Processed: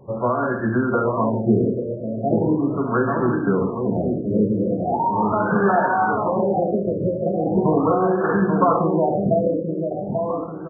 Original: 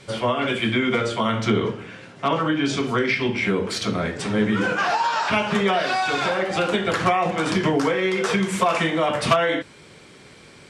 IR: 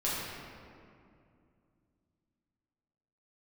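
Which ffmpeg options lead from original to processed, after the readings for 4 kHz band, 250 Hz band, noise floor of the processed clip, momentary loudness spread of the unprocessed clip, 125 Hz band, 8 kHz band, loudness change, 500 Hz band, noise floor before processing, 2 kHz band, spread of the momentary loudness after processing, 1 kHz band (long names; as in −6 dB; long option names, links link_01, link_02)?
below −40 dB, +3.5 dB, −29 dBFS, 4 LU, +4.0 dB, below −40 dB, +1.0 dB, +3.5 dB, −47 dBFS, −6.0 dB, 6 LU, +1.5 dB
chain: -filter_complex "[0:a]asplit=2[link_01][link_02];[link_02]adelay=838,lowpass=frequency=2100:poles=1,volume=-4.5dB,asplit=2[link_03][link_04];[link_04]adelay=838,lowpass=frequency=2100:poles=1,volume=0.4,asplit=2[link_05][link_06];[link_06]adelay=838,lowpass=frequency=2100:poles=1,volume=0.4,asplit=2[link_07][link_08];[link_08]adelay=838,lowpass=frequency=2100:poles=1,volume=0.4,asplit=2[link_09][link_10];[link_10]adelay=838,lowpass=frequency=2100:poles=1,volume=0.4[link_11];[link_01][link_03][link_05][link_07][link_09][link_11]amix=inputs=6:normalize=0,asplit=2[link_12][link_13];[1:a]atrim=start_sample=2205,afade=type=out:start_time=0.23:duration=0.01,atrim=end_sample=10584[link_14];[link_13][link_14]afir=irnorm=-1:irlink=0,volume=-12.5dB[link_15];[link_12][link_15]amix=inputs=2:normalize=0,afftfilt=real='re*lt(b*sr/1024,640*pow(1800/640,0.5+0.5*sin(2*PI*0.39*pts/sr)))':imag='im*lt(b*sr/1024,640*pow(1800/640,0.5+0.5*sin(2*PI*0.39*pts/sr)))':win_size=1024:overlap=0.75"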